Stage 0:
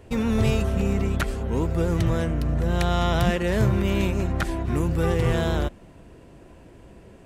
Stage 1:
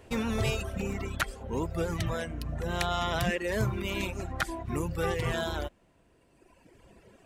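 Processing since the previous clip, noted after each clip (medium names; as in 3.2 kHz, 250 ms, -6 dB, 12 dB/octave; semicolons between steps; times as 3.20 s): reverb removal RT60 2 s; bass shelf 480 Hz -7.5 dB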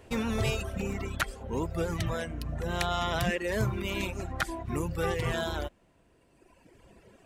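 no audible change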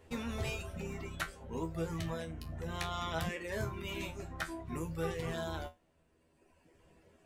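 feedback comb 81 Hz, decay 0.2 s, harmonics all, mix 90%; trim -1 dB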